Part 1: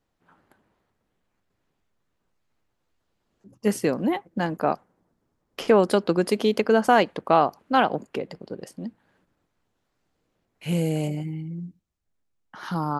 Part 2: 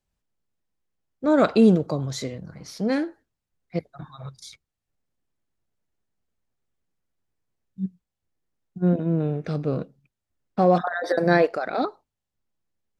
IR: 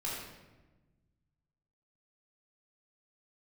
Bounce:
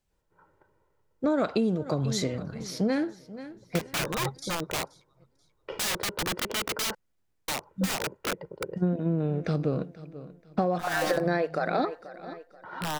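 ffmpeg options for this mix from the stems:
-filter_complex "[0:a]lowpass=1500,aecho=1:1:2.1:0.86,aeval=exprs='(mod(11.2*val(0)+1,2)-1)/11.2':channel_layout=same,adelay=100,volume=-3dB,asplit=3[link_01][link_02][link_03];[link_01]atrim=end=6.95,asetpts=PTS-STARTPTS,afade=type=out:start_time=6.946:duration=0.004:curve=hsin[link_04];[link_02]atrim=start=6.95:end=7.48,asetpts=PTS-STARTPTS,volume=0[link_05];[link_03]atrim=start=7.48,asetpts=PTS-STARTPTS,afade=type=in:duration=0.004:curve=hsin[link_06];[link_04][link_05][link_06]concat=n=3:v=0:a=1[link_07];[1:a]volume=2.5dB,asplit=3[link_08][link_09][link_10];[link_09]volume=-20dB[link_11];[link_10]apad=whole_len=577603[link_12];[link_07][link_12]sidechaincompress=threshold=-19dB:ratio=8:attack=16:release=169[link_13];[link_11]aecho=0:1:483|966|1449|1932|2415:1|0.33|0.109|0.0359|0.0119[link_14];[link_13][link_08][link_14]amix=inputs=3:normalize=0,acompressor=threshold=-22dB:ratio=12"

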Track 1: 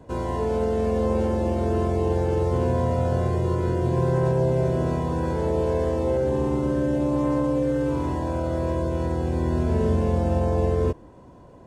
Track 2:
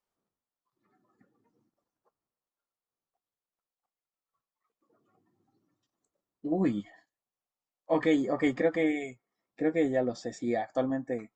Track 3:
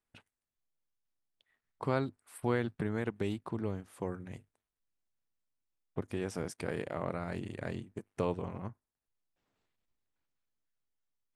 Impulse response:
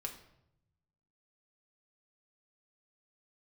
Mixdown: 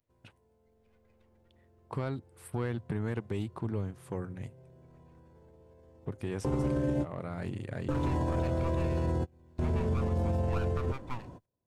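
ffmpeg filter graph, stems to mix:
-filter_complex "[0:a]alimiter=limit=-22.5dB:level=0:latency=1:release=53,dynaudnorm=framelen=270:gausssize=17:maxgain=11.5dB,volume=-2dB[link_01];[1:a]acrossover=split=430 2600:gain=0.0794 1 0.224[link_02][link_03][link_04];[link_02][link_03][link_04]amix=inputs=3:normalize=0,aeval=exprs='abs(val(0))':channel_layout=same,volume=1.5dB,asplit=2[link_05][link_06];[2:a]alimiter=limit=-22.5dB:level=0:latency=1:release=289,asoftclip=type=tanh:threshold=-25dB,adelay=100,volume=0.5dB[link_07];[link_06]apad=whole_len=514337[link_08];[link_01][link_08]sidechaingate=range=-39dB:threshold=-60dB:ratio=16:detection=peak[link_09];[link_09][link_05][link_07]amix=inputs=3:normalize=0,equalizer=frequency=110:width_type=o:width=1.1:gain=6.5,alimiter=limit=-22.5dB:level=0:latency=1:release=182"

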